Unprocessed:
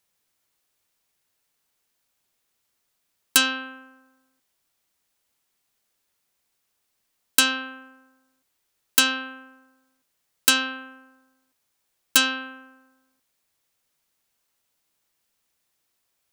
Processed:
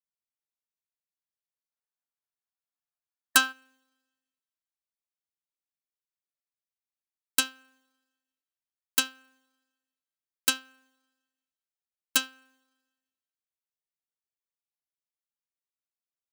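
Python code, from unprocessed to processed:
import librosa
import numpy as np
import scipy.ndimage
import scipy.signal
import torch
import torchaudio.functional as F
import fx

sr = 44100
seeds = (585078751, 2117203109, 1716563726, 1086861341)

y = fx.rev_schroeder(x, sr, rt60_s=1.6, comb_ms=29, drr_db=17.5)
y = fx.spec_box(y, sr, start_s=1.7, length_s=1.82, low_hz=640.0, high_hz=1800.0, gain_db=7)
y = fx.upward_expand(y, sr, threshold_db=-28.0, expansion=2.5)
y = F.gain(torch.from_numpy(y), -2.5).numpy()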